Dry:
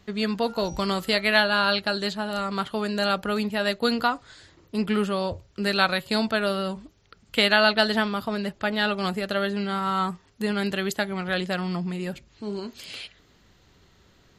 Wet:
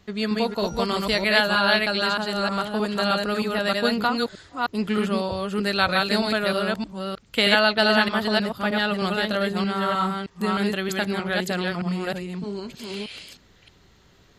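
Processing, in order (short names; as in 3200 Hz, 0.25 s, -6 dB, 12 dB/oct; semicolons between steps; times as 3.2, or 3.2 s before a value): reverse delay 0.311 s, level -2 dB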